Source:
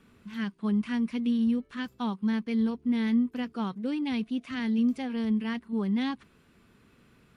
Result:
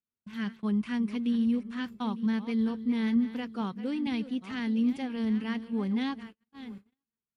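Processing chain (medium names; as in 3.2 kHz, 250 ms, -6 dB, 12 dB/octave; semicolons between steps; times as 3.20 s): backward echo that repeats 452 ms, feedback 42%, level -13 dB; gate -43 dBFS, range -40 dB; trim -1.5 dB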